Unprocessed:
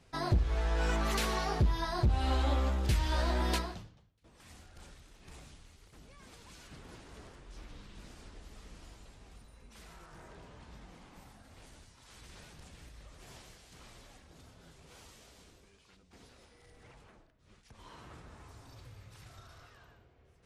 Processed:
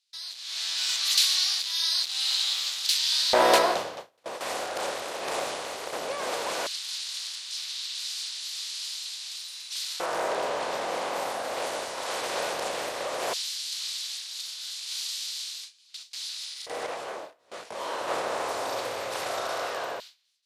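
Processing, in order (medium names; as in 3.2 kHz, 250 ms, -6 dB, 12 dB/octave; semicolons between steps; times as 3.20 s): spectral levelling over time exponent 0.6; gate with hold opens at -35 dBFS; level rider gain up to 16 dB; hard clipper -6 dBFS, distortion -29 dB; LFO high-pass square 0.15 Hz 530–4100 Hz; 16.86–18.08 s: detune thickener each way 45 cents; trim -4.5 dB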